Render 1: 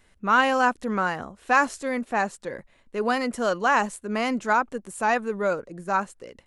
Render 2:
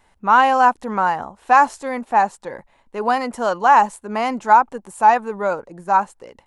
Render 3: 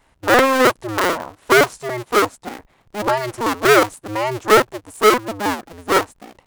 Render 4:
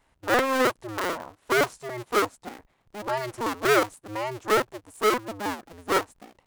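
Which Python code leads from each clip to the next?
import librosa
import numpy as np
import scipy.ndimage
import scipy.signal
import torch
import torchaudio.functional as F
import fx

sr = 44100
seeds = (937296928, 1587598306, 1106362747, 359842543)

y1 = fx.peak_eq(x, sr, hz=870.0, db=13.5, octaves=0.63)
y2 = fx.cycle_switch(y1, sr, every=2, mode='inverted')
y3 = fx.am_noise(y2, sr, seeds[0], hz=5.7, depth_pct=65)
y3 = F.gain(torch.from_numpy(y3), -5.5).numpy()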